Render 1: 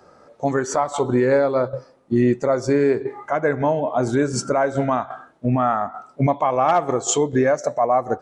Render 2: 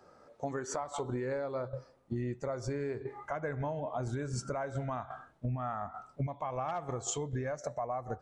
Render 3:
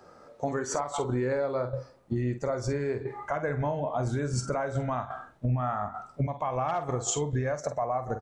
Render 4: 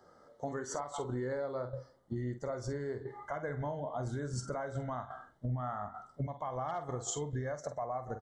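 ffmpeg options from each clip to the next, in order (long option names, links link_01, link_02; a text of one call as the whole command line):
ffmpeg -i in.wav -af "asubboost=boost=6.5:cutoff=110,acompressor=threshold=-24dB:ratio=5,volume=-9dB" out.wav
ffmpeg -i in.wav -filter_complex "[0:a]asplit=2[link_01][link_02];[link_02]adelay=48,volume=-10dB[link_03];[link_01][link_03]amix=inputs=2:normalize=0,volume=6dB" out.wav
ffmpeg -i in.wav -af "asuperstop=centerf=2500:order=12:qfactor=3.8,volume=-8dB" out.wav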